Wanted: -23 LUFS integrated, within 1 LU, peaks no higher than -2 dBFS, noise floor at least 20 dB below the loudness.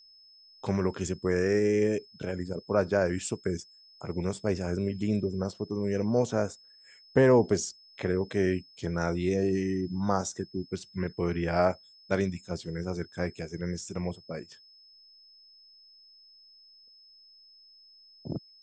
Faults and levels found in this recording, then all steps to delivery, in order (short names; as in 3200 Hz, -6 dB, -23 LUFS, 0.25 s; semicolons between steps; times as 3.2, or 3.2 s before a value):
steady tone 5200 Hz; tone level -54 dBFS; loudness -30.0 LUFS; peak -9.5 dBFS; loudness target -23.0 LUFS
-> notch 5200 Hz, Q 30; gain +7 dB